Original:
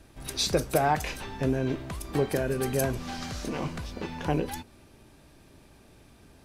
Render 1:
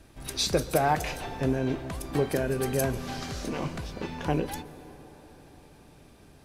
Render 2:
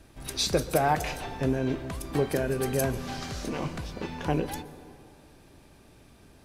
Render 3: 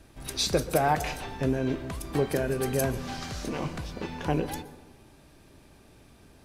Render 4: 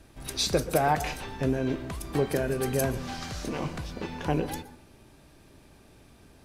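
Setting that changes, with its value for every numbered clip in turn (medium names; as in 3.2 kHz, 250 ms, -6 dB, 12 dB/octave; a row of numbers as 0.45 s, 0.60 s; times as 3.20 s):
plate-style reverb, RT60: 5.2 s, 2.4 s, 1.1 s, 0.5 s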